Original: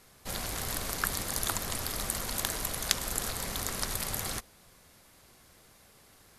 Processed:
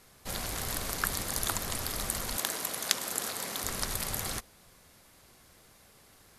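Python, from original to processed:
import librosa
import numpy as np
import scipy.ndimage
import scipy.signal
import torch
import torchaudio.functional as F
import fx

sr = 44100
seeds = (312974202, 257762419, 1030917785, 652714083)

y = fx.highpass(x, sr, hz=220.0, slope=12, at=(2.37, 3.64))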